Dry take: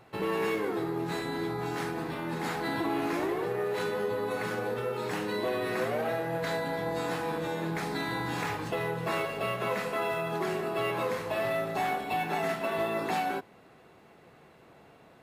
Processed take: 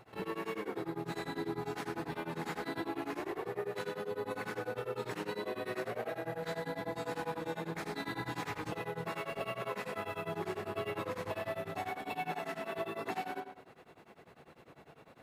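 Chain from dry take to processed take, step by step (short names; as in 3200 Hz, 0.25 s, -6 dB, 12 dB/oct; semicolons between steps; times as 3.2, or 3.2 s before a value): compressor, threshold -34 dBFS, peak gain reduction 8.5 dB; 9.96–11.88 buzz 100 Hz, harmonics 36, -49 dBFS -5 dB/oct; on a send: tape echo 82 ms, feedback 48%, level -5 dB, low-pass 5000 Hz; on the sum: beating tremolo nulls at 10 Hz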